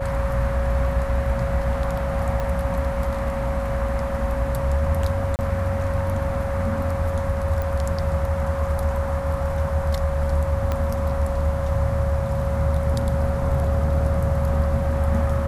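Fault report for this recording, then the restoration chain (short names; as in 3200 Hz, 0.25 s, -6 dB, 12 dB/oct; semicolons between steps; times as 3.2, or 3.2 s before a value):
tone 550 Hz -27 dBFS
2.4 pop -15 dBFS
5.36–5.39 gap 29 ms
7.62 pop
10.72 pop -12 dBFS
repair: de-click; notch 550 Hz, Q 30; interpolate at 5.36, 29 ms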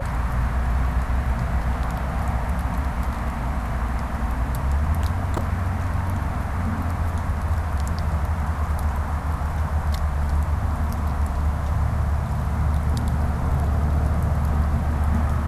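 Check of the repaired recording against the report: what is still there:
2.4 pop
10.72 pop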